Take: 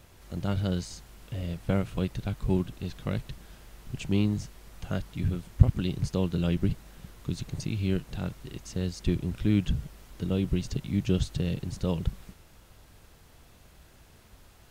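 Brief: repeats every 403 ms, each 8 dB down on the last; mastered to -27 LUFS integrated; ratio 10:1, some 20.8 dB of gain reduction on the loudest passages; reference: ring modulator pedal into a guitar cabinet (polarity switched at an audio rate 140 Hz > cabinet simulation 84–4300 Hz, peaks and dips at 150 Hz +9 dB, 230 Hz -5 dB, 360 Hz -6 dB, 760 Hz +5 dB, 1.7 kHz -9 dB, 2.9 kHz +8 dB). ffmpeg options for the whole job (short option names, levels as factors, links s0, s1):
-af "acompressor=threshold=0.02:ratio=10,aecho=1:1:403|806|1209|1612|2015:0.398|0.159|0.0637|0.0255|0.0102,aeval=exprs='val(0)*sgn(sin(2*PI*140*n/s))':c=same,highpass=84,equalizer=f=150:t=q:w=4:g=9,equalizer=f=230:t=q:w=4:g=-5,equalizer=f=360:t=q:w=4:g=-6,equalizer=f=760:t=q:w=4:g=5,equalizer=f=1700:t=q:w=4:g=-9,equalizer=f=2900:t=q:w=4:g=8,lowpass=f=4300:w=0.5412,lowpass=f=4300:w=1.3066,volume=5.31"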